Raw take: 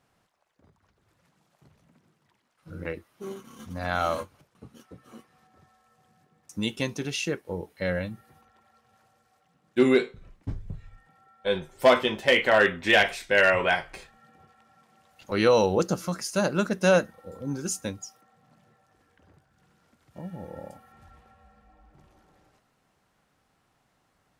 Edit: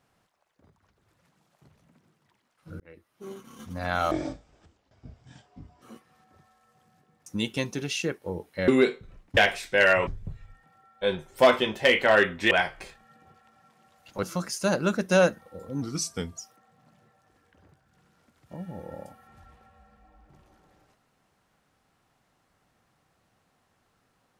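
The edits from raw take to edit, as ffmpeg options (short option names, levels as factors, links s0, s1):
-filter_complex "[0:a]asplit=11[s0][s1][s2][s3][s4][s5][s6][s7][s8][s9][s10];[s0]atrim=end=2.8,asetpts=PTS-STARTPTS,afade=t=out:st=2.796:d=0.004:c=hsin[s11];[s1]atrim=start=2.8:end=4.114,asetpts=PTS-STARTPTS,afade=t=in:d=0.72[s12];[s2]atrim=start=4.11:end=5.05,asetpts=PTS-STARTPTS,asetrate=24255,aresample=44100[s13];[s3]atrim=start=5.046:end=7.912[s14];[s4]atrim=start=9.808:end=10.502[s15];[s5]atrim=start=12.938:end=13.642[s16];[s6]atrim=start=10.498:end=12.942[s17];[s7]atrim=start=13.638:end=15.362[s18];[s8]atrim=start=15.948:end=17.544[s19];[s9]atrim=start=17.54:end=18.03,asetpts=PTS-STARTPTS,asetrate=38367,aresample=44100[s20];[s10]atrim=start=18.026[s21];[s11][s12]concat=n=2:v=0:a=1[s22];[s22][s13]acrossfade=d=0.004:c1=hsin:c2=hsin[s23];[s23][s14]acrossfade=d=0.004:c1=hsin:c2=hsin[s24];[s24][s15]acrossfade=d=0.004:c1=hsin:c2=hsin[s25];[s25][s16]acrossfade=d=0.004:c1=hsin:c2=hsin[s26];[s26][s17]acrossfade=d=0.004:c1=hsin:c2=hsin[s27];[s27][s18]acrossfade=d=0.004:c1=hsin:c2=hsin[s28];[s28][s19]acrossfade=d=0.004:c1=hsin:c2=hsin[s29];[s29][s20]acrossfade=d=0.004:c1=hsin:c2=hsin[s30];[s30][s21]acrossfade=d=0.004:c1=hsin:c2=hsin"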